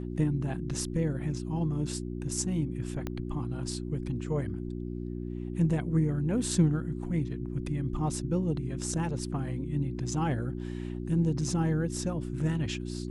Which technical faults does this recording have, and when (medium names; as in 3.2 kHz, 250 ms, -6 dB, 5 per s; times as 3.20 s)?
hum 60 Hz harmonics 6 -36 dBFS
3.07 s: pop -20 dBFS